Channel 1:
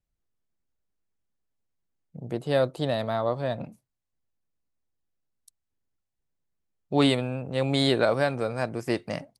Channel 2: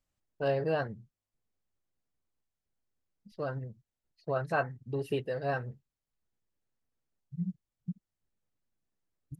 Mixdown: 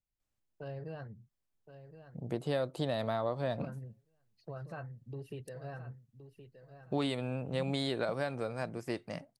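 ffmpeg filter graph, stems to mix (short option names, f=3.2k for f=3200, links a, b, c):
-filter_complex "[0:a]dynaudnorm=f=460:g=9:m=11.5dB,volume=-10dB[a];[1:a]acrossover=split=160[b][c];[c]acompressor=threshold=-45dB:ratio=2.5[d];[b][d]amix=inputs=2:normalize=0,adelay=200,volume=-4dB,asplit=2[e][f];[f]volume=-11dB,aecho=0:1:1069|2138|3207|4276:1|0.26|0.0676|0.0176[g];[a][e][g]amix=inputs=3:normalize=0,acompressor=threshold=-29dB:ratio=6"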